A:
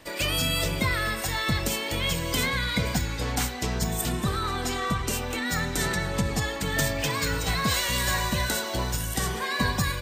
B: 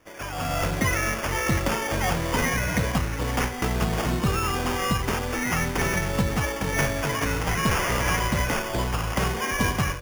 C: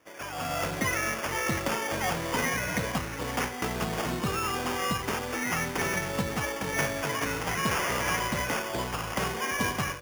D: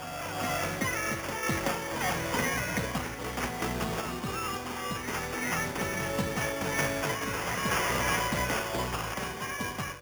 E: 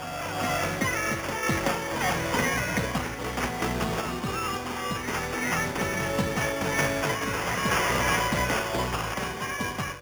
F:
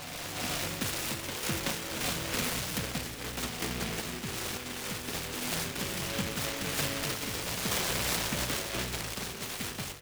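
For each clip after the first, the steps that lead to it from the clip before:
AGC gain up to 13.5 dB; sample-and-hold 11×; gain -8.5 dB
HPF 200 Hz 6 dB/oct; gain -3 dB
random-step tremolo 3.5 Hz; reverse echo 0.378 s -6.5 dB
high shelf 8900 Hz -5 dB; gain +4 dB
noise-modulated delay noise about 2100 Hz, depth 0.3 ms; gain -6.5 dB

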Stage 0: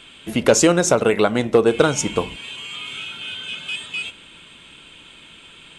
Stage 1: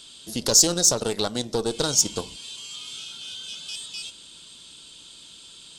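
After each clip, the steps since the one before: one diode to ground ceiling -16 dBFS; resonant high shelf 3300 Hz +13 dB, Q 3; in parallel at -2 dB: level quantiser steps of 21 dB; on the sum: gain -11.5 dB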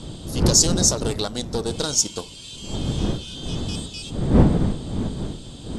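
wind noise 220 Hz -23 dBFS; elliptic low-pass 12000 Hz, stop band 50 dB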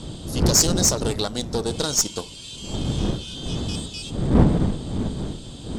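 one diode to ground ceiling -14.5 dBFS; gain +1 dB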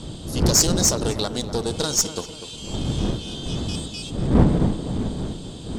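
tape echo 0.246 s, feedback 54%, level -9.5 dB, low-pass 1400 Hz

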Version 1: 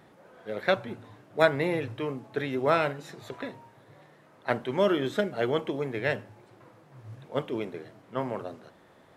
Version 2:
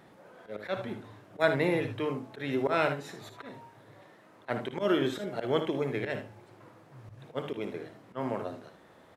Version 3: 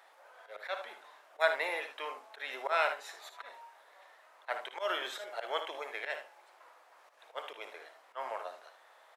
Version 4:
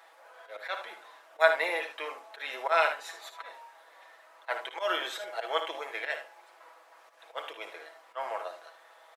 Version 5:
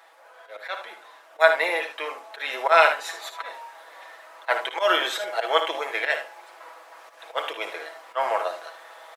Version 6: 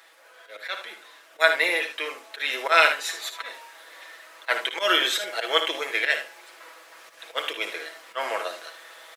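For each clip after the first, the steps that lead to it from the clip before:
auto swell 0.119 s; notches 50/100/150 Hz; early reflections 57 ms -11 dB, 76 ms -11.5 dB
HPF 660 Hz 24 dB/oct
comb 6.1 ms, depth 51%; gain +3 dB
vocal rider within 4 dB 2 s; gain +7 dB
bell 810 Hz -14 dB 1.5 oct; gain +6 dB

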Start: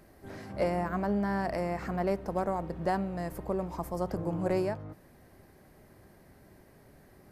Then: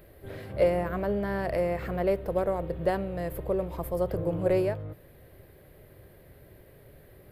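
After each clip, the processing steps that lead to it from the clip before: EQ curve 130 Hz 0 dB, 220 Hz -11 dB, 520 Hz +2 dB, 800 Hz -10 dB, 2000 Hz -4 dB, 3500 Hz 0 dB, 5900 Hz -16 dB, 14000 Hz +3 dB; gain +6.5 dB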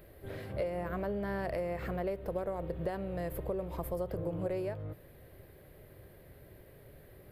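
compressor 6:1, threshold -30 dBFS, peak gain reduction 11.5 dB; gain -2 dB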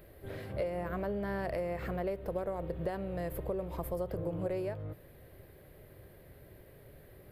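nothing audible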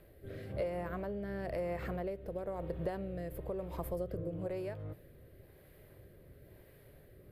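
rotary speaker horn 1 Hz; gain -1 dB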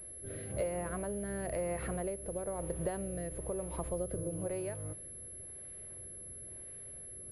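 pulse-width modulation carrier 11000 Hz; gain +1 dB

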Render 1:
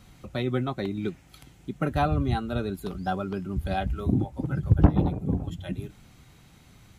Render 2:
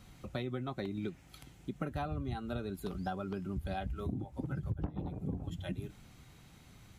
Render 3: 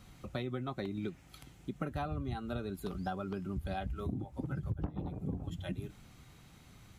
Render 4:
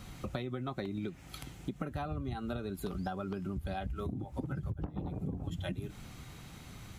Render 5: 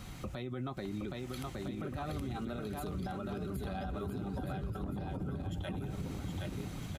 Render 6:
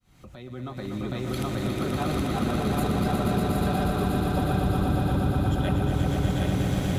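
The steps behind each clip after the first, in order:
compressor 8:1, threshold -30 dBFS, peak gain reduction 19.5 dB; gain -3.5 dB
bell 1200 Hz +2.5 dB 0.22 oct
compressor, threshold -42 dBFS, peak gain reduction 11.5 dB; gain +8 dB
on a send: bouncing-ball echo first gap 0.77 s, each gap 0.7×, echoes 5; on the sum: limiter -32 dBFS, peak gain reduction 10 dB; gain +1.5 dB
opening faded in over 1.38 s; swelling echo 0.12 s, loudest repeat 5, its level -5.5 dB; gain +9 dB

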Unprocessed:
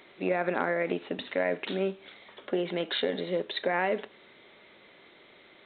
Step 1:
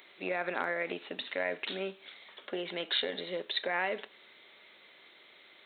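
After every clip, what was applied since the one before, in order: tilt +3 dB/oct; gain -4 dB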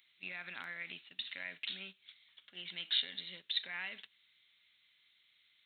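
EQ curve 100 Hz 0 dB, 470 Hz -29 dB, 3000 Hz -2 dB; gate -51 dBFS, range -9 dB; gain +1 dB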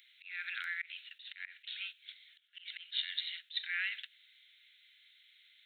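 steep high-pass 1400 Hz 72 dB/oct; auto swell 0.203 s; gain +6.5 dB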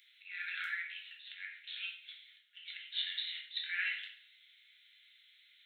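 shoebox room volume 120 m³, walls mixed, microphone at 1 m; gain -3.5 dB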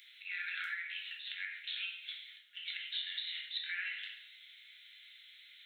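compressor 6:1, threshold -44 dBFS, peak gain reduction 12 dB; gain +7 dB

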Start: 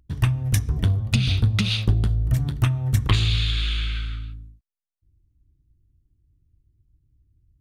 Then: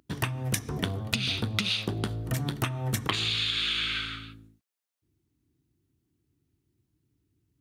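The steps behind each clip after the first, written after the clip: HPF 260 Hz 12 dB/oct; compressor 10:1, threshold -31 dBFS, peak gain reduction 11 dB; gain +6.5 dB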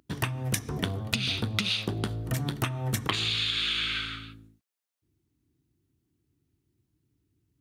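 nothing audible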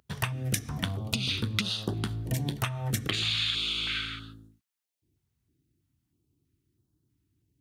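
stepped notch 3.1 Hz 300–2300 Hz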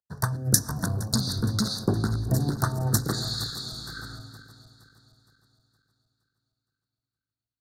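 regenerating reverse delay 0.233 s, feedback 81%, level -10 dB; elliptic band-stop 1600–4300 Hz, stop band 50 dB; three-band expander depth 100%; gain +4 dB

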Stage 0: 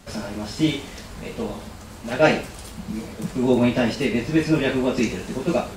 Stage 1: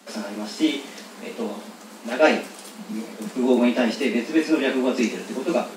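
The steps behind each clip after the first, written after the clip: steep high-pass 190 Hz 96 dB/oct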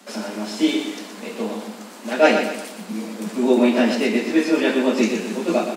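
feedback echo 0.121 s, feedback 43%, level -7.5 dB; gain +2 dB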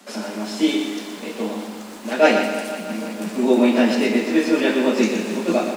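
lo-fi delay 0.163 s, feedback 80%, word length 7-bit, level -13.5 dB

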